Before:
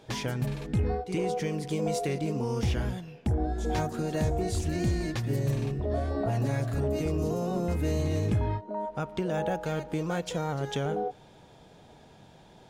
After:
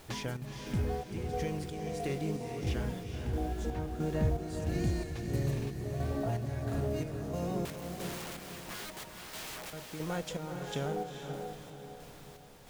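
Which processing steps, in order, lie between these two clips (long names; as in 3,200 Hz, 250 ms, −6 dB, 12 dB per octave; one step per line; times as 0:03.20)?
0:03.73–0:04.38: bass and treble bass +4 dB, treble −14 dB
background noise pink −50 dBFS
0:07.65–0:09.73: wrap-around overflow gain 33.5 dB
square-wave tremolo 1.5 Hz, depth 60%, duty 55%
feedback delay with all-pass diffusion 460 ms, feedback 44%, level −5.5 dB
level −5 dB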